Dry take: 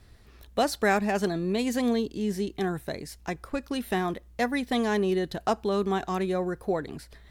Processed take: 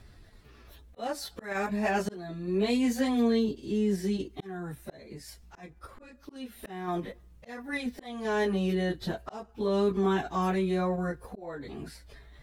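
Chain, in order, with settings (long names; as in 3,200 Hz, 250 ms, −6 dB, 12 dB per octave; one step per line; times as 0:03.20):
time stretch by phase vocoder 1.7×
high-shelf EQ 5,100 Hz −4 dB
volume swells 472 ms
in parallel at −2 dB: output level in coarse steps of 12 dB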